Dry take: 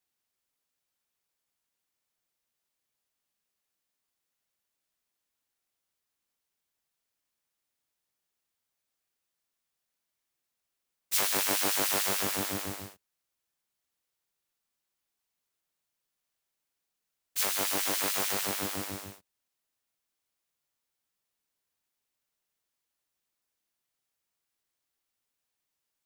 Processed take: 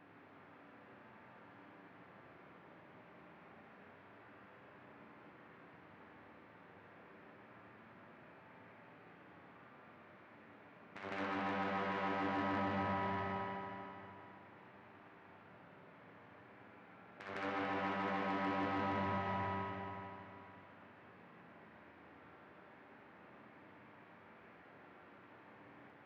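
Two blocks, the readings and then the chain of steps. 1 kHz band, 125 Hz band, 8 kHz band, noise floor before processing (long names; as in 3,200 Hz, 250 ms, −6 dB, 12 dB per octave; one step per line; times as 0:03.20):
+1.0 dB, +1.5 dB, below −35 dB, −85 dBFS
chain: compressor on every frequency bin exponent 0.6
parametric band 350 Hz +2 dB
four-comb reverb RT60 2.8 s, combs from 28 ms, DRR −2 dB
downward compressor 6 to 1, threshold −32 dBFS, peak gain reduction 13 dB
low-pass filter 2,000 Hz 24 dB per octave
soft clipping −35 dBFS, distortion −13 dB
high-pass filter 110 Hz 24 dB per octave
low-shelf EQ 180 Hz +8.5 dB
backwards echo 157 ms −5 dB
flanger 0.11 Hz, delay 6.6 ms, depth 8.9 ms, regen −63%
level +7 dB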